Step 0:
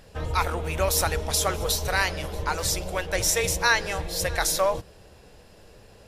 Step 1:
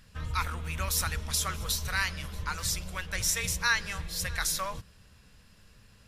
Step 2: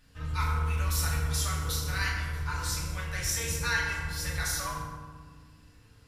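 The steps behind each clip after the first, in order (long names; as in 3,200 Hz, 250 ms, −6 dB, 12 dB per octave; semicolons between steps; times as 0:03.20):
flat-topped bell 520 Hz −13 dB; level −4.5 dB
feedback delay network reverb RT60 1.5 s, low-frequency decay 1.55×, high-frequency decay 0.5×, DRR −6.5 dB; level −8 dB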